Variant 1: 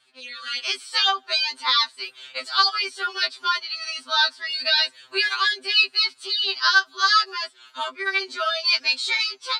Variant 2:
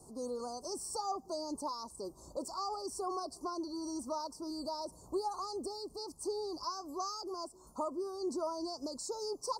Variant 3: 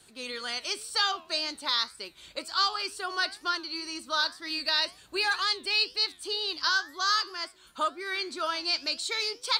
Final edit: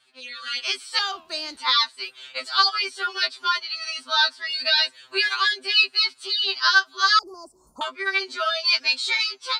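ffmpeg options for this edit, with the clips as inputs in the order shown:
ffmpeg -i take0.wav -i take1.wav -i take2.wav -filter_complex "[0:a]asplit=3[link_01][link_02][link_03];[link_01]atrim=end=0.992[link_04];[2:a]atrim=start=0.988:end=1.572[link_05];[link_02]atrim=start=1.568:end=7.192[link_06];[1:a]atrim=start=7.188:end=7.812[link_07];[link_03]atrim=start=7.808[link_08];[link_04][link_05]acrossfade=duration=0.004:curve1=hsin:curve2=hsin[link_09];[link_09][link_06]acrossfade=duration=0.004:curve1=hsin:curve2=hsin[link_10];[link_10][link_07]acrossfade=duration=0.004:curve1=hsin:curve2=hsin[link_11];[link_11][link_08]acrossfade=duration=0.004:curve1=hsin:curve2=hsin" out.wav

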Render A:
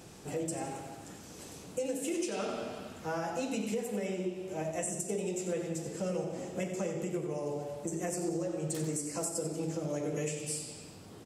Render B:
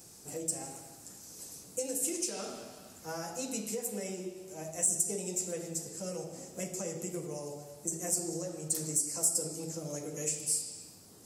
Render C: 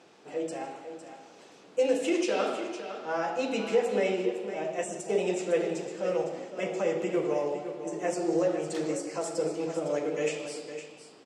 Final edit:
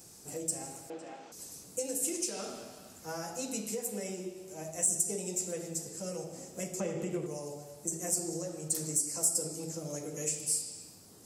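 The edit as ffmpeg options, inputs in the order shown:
ffmpeg -i take0.wav -i take1.wav -i take2.wav -filter_complex "[1:a]asplit=3[link_01][link_02][link_03];[link_01]atrim=end=0.902[link_04];[2:a]atrim=start=0.898:end=1.322[link_05];[link_02]atrim=start=1.318:end=6.802[link_06];[0:a]atrim=start=6.798:end=7.262[link_07];[link_03]atrim=start=7.258[link_08];[link_04][link_05]acrossfade=duration=0.004:curve1=hsin:curve2=hsin[link_09];[link_09][link_06]acrossfade=duration=0.004:curve1=hsin:curve2=hsin[link_10];[link_10][link_07]acrossfade=duration=0.004:curve1=hsin:curve2=hsin[link_11];[link_11][link_08]acrossfade=duration=0.004:curve1=hsin:curve2=hsin" out.wav

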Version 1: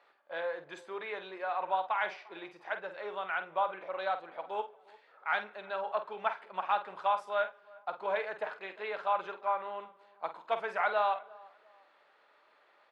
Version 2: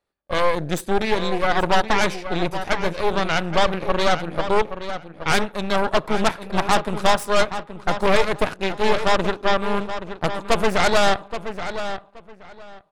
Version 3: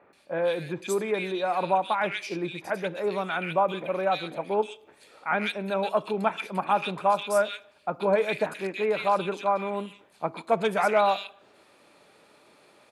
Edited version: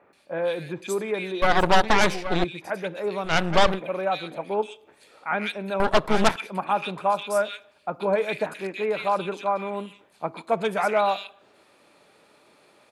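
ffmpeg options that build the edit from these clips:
ffmpeg -i take0.wav -i take1.wav -i take2.wav -filter_complex "[1:a]asplit=3[link_01][link_02][link_03];[2:a]asplit=4[link_04][link_05][link_06][link_07];[link_04]atrim=end=1.422[link_08];[link_01]atrim=start=1.418:end=2.442[link_09];[link_05]atrim=start=2.438:end=3.34[link_10];[link_02]atrim=start=3.24:end=3.81[link_11];[link_06]atrim=start=3.71:end=5.802[link_12];[link_03]atrim=start=5.798:end=6.362[link_13];[link_07]atrim=start=6.358[link_14];[link_08][link_09]acrossfade=duration=0.004:curve1=hsin:curve2=hsin[link_15];[link_15][link_10]acrossfade=duration=0.004:curve1=hsin:curve2=hsin[link_16];[link_16][link_11]acrossfade=duration=0.1:curve1=tri:curve2=tri[link_17];[link_17][link_12]acrossfade=duration=0.1:curve1=tri:curve2=tri[link_18];[link_18][link_13]acrossfade=duration=0.004:curve1=hsin:curve2=hsin[link_19];[link_19][link_14]acrossfade=duration=0.004:curve1=hsin:curve2=hsin" out.wav

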